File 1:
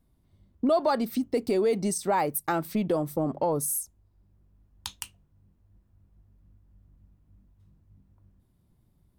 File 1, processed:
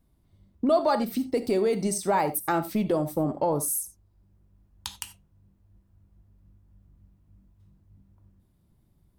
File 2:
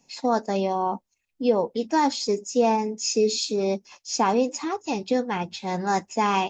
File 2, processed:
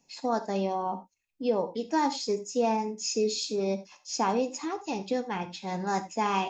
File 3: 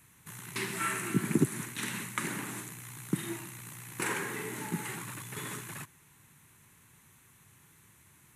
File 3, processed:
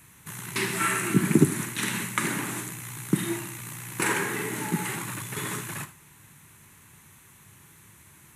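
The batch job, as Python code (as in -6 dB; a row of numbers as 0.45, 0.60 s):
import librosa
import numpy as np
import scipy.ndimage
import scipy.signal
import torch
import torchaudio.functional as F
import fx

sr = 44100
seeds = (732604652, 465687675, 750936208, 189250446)

y = fx.rev_gated(x, sr, seeds[0], gate_ms=110, shape='flat', drr_db=10.5)
y = y * 10.0 ** (-30 / 20.0) / np.sqrt(np.mean(np.square(y)))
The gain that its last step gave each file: +1.0, -5.5, +7.0 dB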